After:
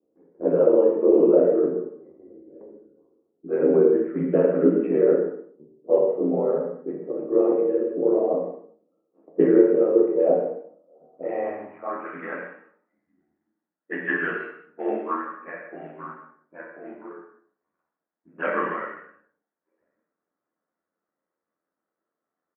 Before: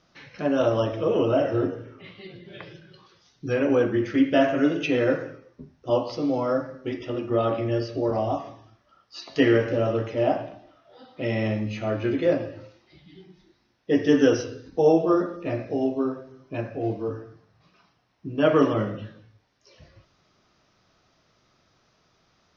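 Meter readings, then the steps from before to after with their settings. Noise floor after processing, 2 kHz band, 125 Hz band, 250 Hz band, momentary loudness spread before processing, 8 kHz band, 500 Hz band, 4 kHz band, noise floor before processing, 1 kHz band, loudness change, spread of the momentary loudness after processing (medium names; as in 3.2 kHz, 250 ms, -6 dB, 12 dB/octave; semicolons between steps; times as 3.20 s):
under -85 dBFS, +0.5 dB, -8.5 dB, -0.5 dB, 20 LU, no reading, +3.0 dB, under -20 dB, -66 dBFS, -2.5 dB, +2.5 dB, 20 LU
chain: CVSD coder 64 kbps; level-controlled noise filter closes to 350 Hz, open at -17 dBFS; comb 6.7 ms, depth 63%; mistuned SSB -63 Hz 260–2400 Hz; ring modulator 42 Hz; gated-style reverb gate 250 ms falling, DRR 1 dB; band-pass sweep 430 Hz -> 1.7 kHz, 10.61–12.63 s; trim +7.5 dB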